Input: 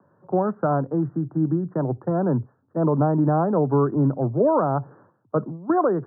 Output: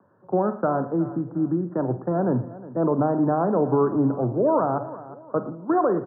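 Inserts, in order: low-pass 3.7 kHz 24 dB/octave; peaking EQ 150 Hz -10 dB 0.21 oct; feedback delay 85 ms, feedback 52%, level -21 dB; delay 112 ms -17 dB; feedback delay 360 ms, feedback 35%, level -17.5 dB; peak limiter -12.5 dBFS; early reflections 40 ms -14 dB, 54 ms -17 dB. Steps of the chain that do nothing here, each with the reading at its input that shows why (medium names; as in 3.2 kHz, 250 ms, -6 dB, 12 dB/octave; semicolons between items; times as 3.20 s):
low-pass 3.7 kHz: input has nothing above 1.4 kHz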